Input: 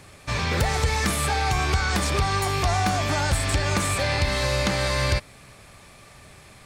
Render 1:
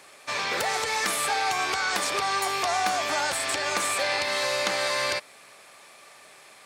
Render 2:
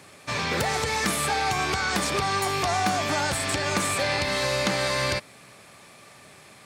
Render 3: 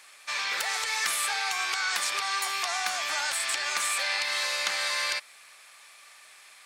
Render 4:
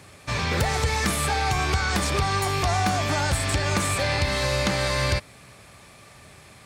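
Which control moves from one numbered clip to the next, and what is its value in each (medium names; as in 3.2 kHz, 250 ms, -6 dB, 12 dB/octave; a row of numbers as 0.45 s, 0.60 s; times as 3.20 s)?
high-pass, cutoff frequency: 470 Hz, 170 Hz, 1.3 kHz, 62 Hz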